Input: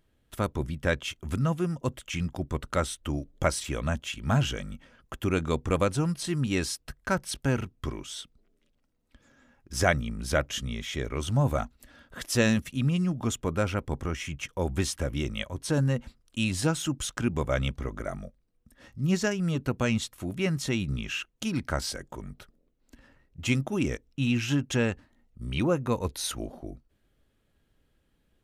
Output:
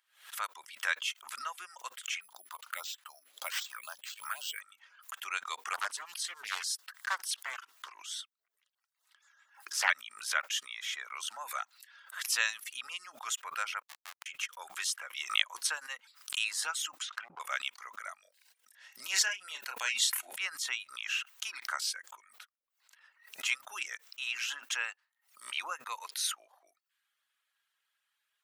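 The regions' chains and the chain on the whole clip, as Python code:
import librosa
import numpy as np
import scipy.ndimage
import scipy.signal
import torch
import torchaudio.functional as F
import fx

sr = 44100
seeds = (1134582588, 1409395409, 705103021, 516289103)

y = fx.chain(x, sr, fx.phaser_stages(stages=4, low_hz=280.0, high_hz=2200.0, hz=1.9, feedback_pct=20),
    fx.resample_bad(factor=4, down='none', up='hold'), at=(2.21, 4.61))
y = fx.chain(y, sr, fx.highpass(hz=73.0, slope=24),
    fx.filter_lfo_notch(shape='square', hz=8.6, low_hz=550.0, high_hz=2400.0, q=2.4),
    fx.doppler_dist(depth_ms=0.84), at=(5.73, 9.9))
y = fx.chain(y, sr, fx.cvsd(bps=32000),
    fx.high_shelf(hz=3700.0, db=-4.5),
    fx.schmitt(flips_db=-27.5), at=(13.82, 14.26))
y = fx.chain(y, sr, fx.highpass(hz=320.0, slope=6),
    fx.transient(attack_db=7, sustain_db=1), at=(15.15, 16.39))
y = fx.chain(y, sr, fx.highpass(hz=62.0, slope=24),
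    fx.env_lowpass_down(base_hz=370.0, full_db=-22.5),
    fx.clip_hard(threshold_db=-23.5), at=(16.97, 17.4))
y = fx.chain(y, sr, fx.peak_eq(hz=1200.0, db=-13.5, octaves=0.21),
    fx.doubler(ms=31.0, db=-5.5),
    fx.sustainer(db_per_s=51.0), at=(18.21, 20.38))
y = fx.dereverb_blind(y, sr, rt60_s=0.53)
y = scipy.signal.sosfilt(scipy.signal.butter(4, 1100.0, 'highpass', fs=sr, output='sos'), y)
y = fx.pre_swell(y, sr, db_per_s=130.0)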